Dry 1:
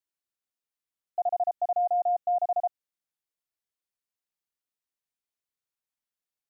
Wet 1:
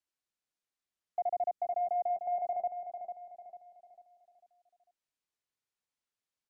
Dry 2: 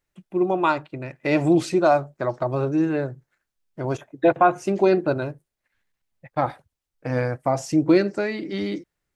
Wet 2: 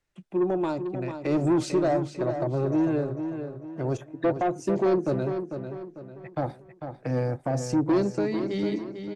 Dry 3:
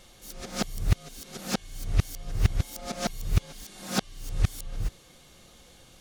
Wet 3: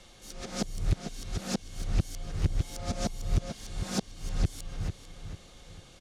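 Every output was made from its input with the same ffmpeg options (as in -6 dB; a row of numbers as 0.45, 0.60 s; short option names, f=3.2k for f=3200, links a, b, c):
-filter_complex "[0:a]lowpass=8.5k,acrossover=split=240|640|4800[a][b][c][d];[c]acompressor=threshold=-41dB:ratio=6[e];[a][b][e][d]amix=inputs=4:normalize=0,asoftclip=type=tanh:threshold=-18dB,asplit=2[f][g];[g]adelay=447,lowpass=f=4.7k:p=1,volume=-8dB,asplit=2[h][i];[i]adelay=447,lowpass=f=4.7k:p=1,volume=0.4,asplit=2[j][k];[k]adelay=447,lowpass=f=4.7k:p=1,volume=0.4,asplit=2[l][m];[m]adelay=447,lowpass=f=4.7k:p=1,volume=0.4,asplit=2[n][o];[o]adelay=447,lowpass=f=4.7k:p=1,volume=0.4[p];[f][h][j][l][n][p]amix=inputs=6:normalize=0"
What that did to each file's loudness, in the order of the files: -6.5, -4.5, -3.0 LU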